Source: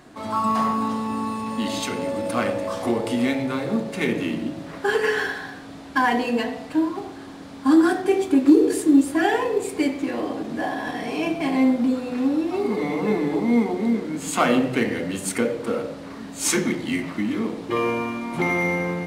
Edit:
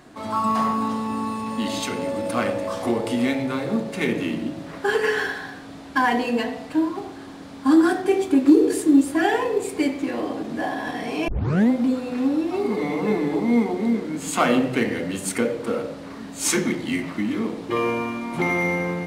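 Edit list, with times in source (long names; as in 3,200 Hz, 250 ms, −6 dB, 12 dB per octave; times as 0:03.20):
0:11.28: tape start 0.42 s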